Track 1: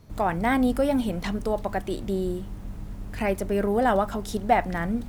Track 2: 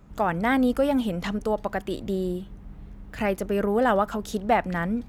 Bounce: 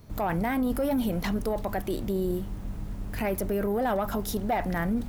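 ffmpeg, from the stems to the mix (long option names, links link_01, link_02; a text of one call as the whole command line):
ffmpeg -i stem1.wav -i stem2.wav -filter_complex "[0:a]volume=1dB[link_01];[1:a]aexciter=amount=12.5:drive=9.6:freq=9700,volume=-17.5dB[link_02];[link_01][link_02]amix=inputs=2:normalize=0,asoftclip=type=tanh:threshold=-13dB,alimiter=limit=-20.5dB:level=0:latency=1:release=10" out.wav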